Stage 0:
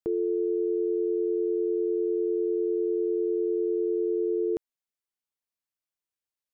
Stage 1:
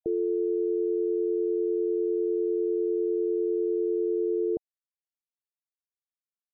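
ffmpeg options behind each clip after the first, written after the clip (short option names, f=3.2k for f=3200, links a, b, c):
-af "afftfilt=real='re*gte(hypot(re,im),0.0178)':imag='im*gte(hypot(re,im),0.0178)':win_size=1024:overlap=0.75"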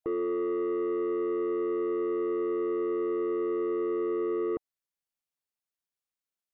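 -af "asoftclip=type=tanh:threshold=-28dB,volume=2dB"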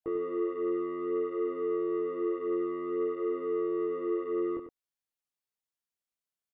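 -af "flanger=delay=17.5:depth=6.3:speed=0.54,aecho=1:1:95:0.355"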